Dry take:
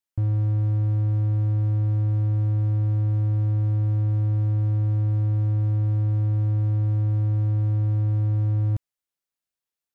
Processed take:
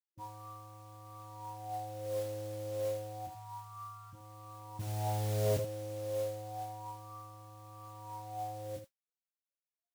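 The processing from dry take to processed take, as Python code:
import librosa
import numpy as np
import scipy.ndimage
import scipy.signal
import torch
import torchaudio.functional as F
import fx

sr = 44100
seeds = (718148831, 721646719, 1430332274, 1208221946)

p1 = fx.cheby1_bandstop(x, sr, low_hz=120.0, high_hz=780.0, order=5, at=(3.27, 4.13))
p2 = fx.tilt_eq(p1, sr, slope=-4.5, at=(4.79, 5.57))
p3 = fx.spec_topn(p2, sr, count=16)
p4 = fx.wah_lfo(p3, sr, hz=0.3, low_hz=480.0, high_hz=1300.0, q=16.0)
p5 = fx.mod_noise(p4, sr, seeds[0], snr_db=15)
p6 = p5 + fx.room_early_taps(p5, sr, ms=(23, 77), db=(-4.0, -8.5), dry=0)
p7 = fx.doppler_dist(p6, sr, depth_ms=0.37)
y = p7 * librosa.db_to_amplitude(13.5)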